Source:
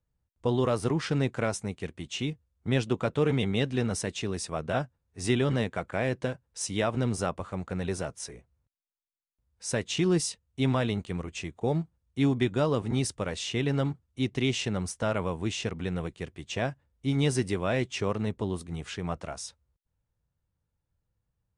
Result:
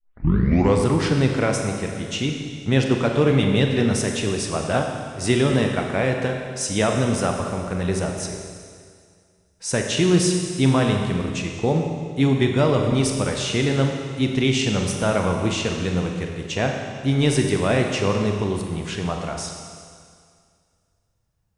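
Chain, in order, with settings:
turntable start at the beginning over 0.84 s
four-comb reverb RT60 2.1 s, combs from 30 ms, DRR 2.5 dB
level +6.5 dB

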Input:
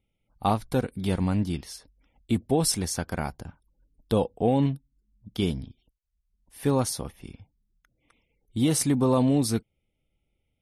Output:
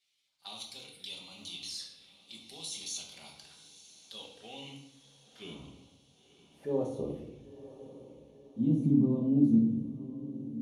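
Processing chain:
mu-law and A-law mismatch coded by mu
parametric band 10,000 Hz +9 dB 2.1 octaves
transient designer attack −8 dB, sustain +6 dB
brickwall limiter −17.5 dBFS, peak gain reduction 11 dB
flanger swept by the level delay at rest 8 ms, full sweep at −27 dBFS
band-pass filter sweep 3,900 Hz → 220 Hz, 0:04.12–0:07.82
feedback delay with all-pass diffusion 987 ms, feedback 50%, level −15 dB
rectangular room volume 260 cubic metres, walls mixed, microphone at 1.2 metres

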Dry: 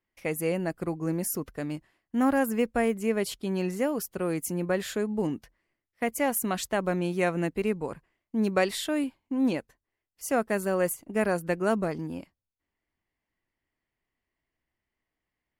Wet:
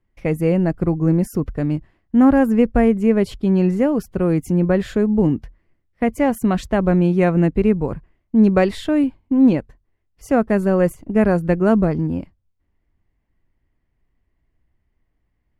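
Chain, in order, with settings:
RIAA equalisation playback
level +6 dB

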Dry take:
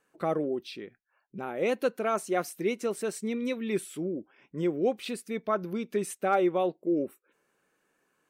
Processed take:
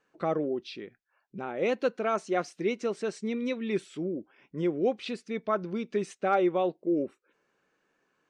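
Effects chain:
low-pass filter 6,300 Hz 24 dB per octave

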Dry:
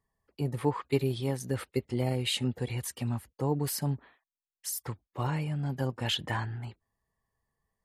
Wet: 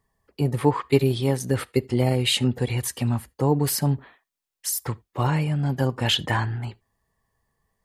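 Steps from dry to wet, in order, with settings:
on a send: high-shelf EQ 5,900 Hz −7 dB + convolution reverb, pre-delay 3 ms, DRR 22.5 dB
on the sum: level +8.5 dB

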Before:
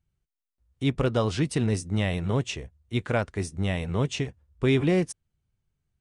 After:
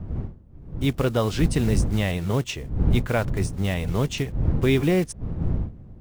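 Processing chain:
one scale factor per block 5 bits
wind on the microphone 120 Hz −29 dBFS
level +2 dB

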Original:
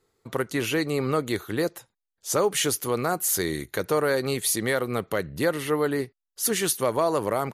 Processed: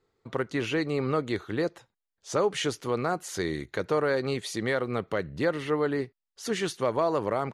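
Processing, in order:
high-frequency loss of the air 110 metres
level −2 dB

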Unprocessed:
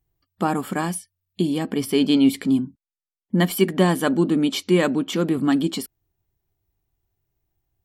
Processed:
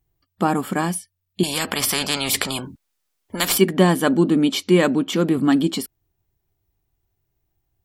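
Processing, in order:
0:01.43–0:03.58: every bin compressed towards the loudest bin 4 to 1
level +2.5 dB

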